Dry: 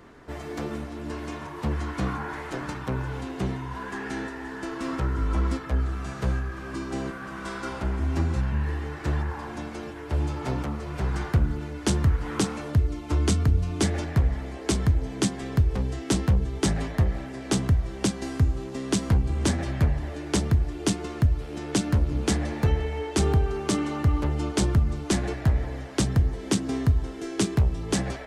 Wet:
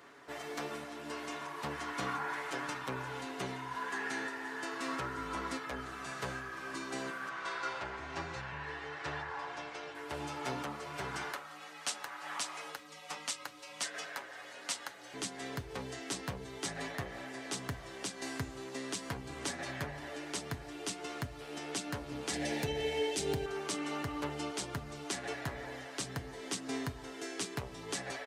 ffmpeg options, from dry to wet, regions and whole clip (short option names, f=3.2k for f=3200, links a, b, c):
-filter_complex "[0:a]asettb=1/sr,asplit=3[a][b][c];[a]atrim=end=7.294[d];[b]atrim=start=7.29:end=9.95,asetpts=PTS-STARTPTS,afade=t=in:d=0.004:c=qsin,afade=t=out:st=2.656:d=0.004:c=qsin,lowpass=5.3k,equalizer=f=240:w=2.9:g=-14[e];[c]atrim=start=9.946[f];[d][e]acrossfade=d=0.004:c1=hsin:c2=qsin[g];[g][f]acrossfade=d=0.004:c1=qsin:c2=hsin,asettb=1/sr,asplit=3[h][i][j];[h]atrim=end=11.334[k];[i]atrim=start=11.33:end=15.14,asetpts=PTS-STARTPTS,afade=t=in:d=0.004:c=qsin,afade=t=out:st=3.806:d=0.004:c=qsin,highpass=720,afreqshift=-140[l];[j]atrim=start=15.136[m];[k][l]acrossfade=d=0.004:c1=hsin:c2=qsin[n];[n][m]acrossfade=d=0.004:c1=qsin:c2=hsin,asettb=1/sr,asplit=3[o][p][q];[o]atrim=end=22.334[r];[p]atrim=start=22.33:end=23.46,asetpts=PTS-STARTPTS,afade=t=in:d=0.004:c=qsin,afade=t=out:st=1.126:d=0.004:c=qsin,equalizer=f=1.2k:t=o:w=0.93:g=-14.5,acontrast=83[s];[q]atrim=start=23.456[t];[r][s]acrossfade=d=0.004:c1=hsin:c2=qsin[u];[u][t]acrossfade=d=0.004:c1=qsin:c2=hsin,highpass=f=940:p=1,aecho=1:1:7.1:0.42,alimiter=limit=-22.5dB:level=0:latency=1:release=232,volume=-1dB"